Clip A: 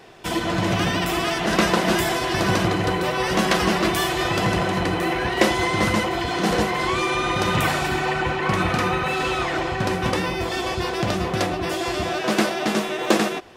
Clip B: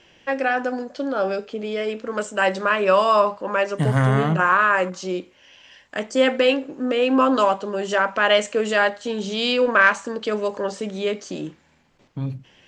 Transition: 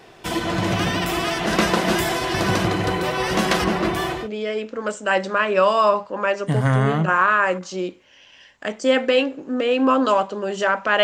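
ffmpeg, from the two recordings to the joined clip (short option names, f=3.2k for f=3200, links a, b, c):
-filter_complex "[0:a]asettb=1/sr,asplit=3[a][b][c];[a]atrim=end=3.644[d];[b]atrim=start=3.64:end=4.29,asetpts=PTS-STARTPTS,afade=t=in:d=0.004:c=qsin,afade=t=out:st=0.646:d=0.004:c=qsin,highshelf=f=2.8k:g=-9.5[e];[c]atrim=start=4.286[f];[d][e]acrossfade=d=0.004:c1=hsin:c2=qsin[g];[g][f]acrossfade=d=0.004:c1=qsin:c2=hsin,apad=whole_dur=11.03,atrim=end=11.03,atrim=end=4.29,asetpts=PTS-STARTPTS[h];[1:a]atrim=start=1.42:end=8.34,asetpts=PTS-STARTPTS[i];[h][i]acrossfade=d=0.18:c1=tri:c2=tri"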